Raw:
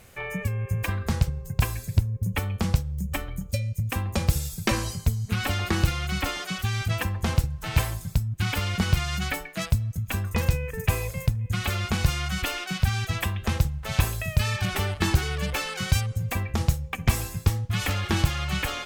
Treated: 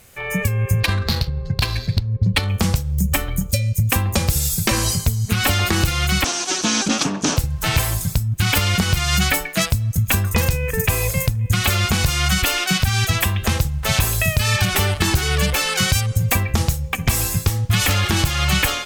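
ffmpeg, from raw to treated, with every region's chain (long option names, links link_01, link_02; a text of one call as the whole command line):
ffmpeg -i in.wav -filter_complex "[0:a]asettb=1/sr,asplit=3[link_01][link_02][link_03];[link_01]atrim=end=0.804[link_04];[link_02]atrim=start=0.8:end=2.49,asetpts=PTS-STARTPTS,afade=type=in:duration=0.004:curve=qsin,afade=type=out:start_time=1.686:duration=0.004:curve=qsin,lowpass=frequency=4300:width_type=q:width=7.2,adynamicsmooth=sensitivity=6:basefreq=2100[link_05];[link_03]atrim=start=2.486[link_06];[link_04][link_05]acrossfade=duration=0.004:curve1=hsin:curve2=qsin[link_07];[link_07][link_06]acrossfade=duration=0.004:curve1=qsin:curve2=hsin,asettb=1/sr,asplit=3[link_08][link_09][link_10];[link_08]atrim=end=6.244[link_11];[link_09]atrim=start=6.24:end=7.37,asetpts=PTS-STARTPTS,afade=type=in:duration=0.004:curve=qsin,afade=type=out:start_time=1.126:duration=0.004:curve=qsin,aeval=exprs='abs(val(0))':channel_layout=same,highpass=160,equalizer=frequency=280:width_type=q:width=4:gain=8,equalizer=frequency=2000:width_type=q:width=4:gain=-7,equalizer=frequency=6000:width_type=q:width=4:gain=9,lowpass=frequency=7900:width=0.5412,lowpass=frequency=7900:width=1.3066[link_12];[link_10]atrim=start=7.366[link_13];[link_11][link_12]acrossfade=duration=0.004:curve1=hsin:curve2=qsin[link_14];[link_14][link_13]acrossfade=duration=0.004:curve1=qsin:curve2=hsin,alimiter=limit=-18.5dB:level=0:latency=1:release=236,dynaudnorm=framelen=120:gausssize=5:maxgain=11dB,highshelf=frequency=3900:gain=7.5" out.wav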